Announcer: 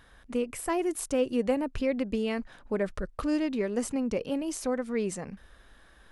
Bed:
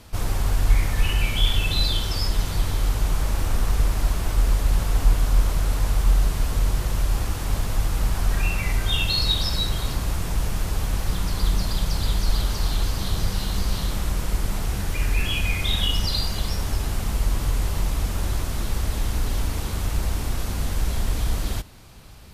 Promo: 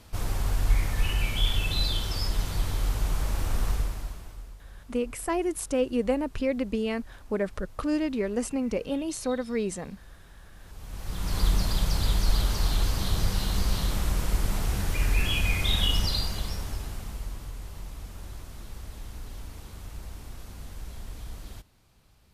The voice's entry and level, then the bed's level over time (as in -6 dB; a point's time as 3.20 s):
4.60 s, +1.0 dB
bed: 3.70 s -5 dB
4.58 s -27 dB
10.51 s -27 dB
11.37 s -2 dB
15.98 s -2 dB
17.53 s -16 dB